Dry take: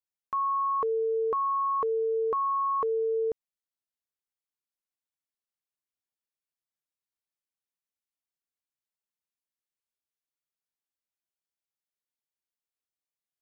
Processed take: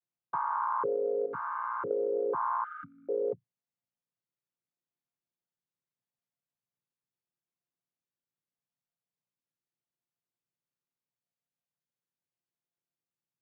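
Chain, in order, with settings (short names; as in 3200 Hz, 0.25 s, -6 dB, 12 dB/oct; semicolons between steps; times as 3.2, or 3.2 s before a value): chord vocoder minor triad, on A#2; 1.26–1.91 band shelf 640 Hz -10.5 dB; compressor, threshold -30 dBFS, peak gain reduction 6 dB; 2.64–3.09 brick-wall FIR band-stop 290–1200 Hz; gain +3 dB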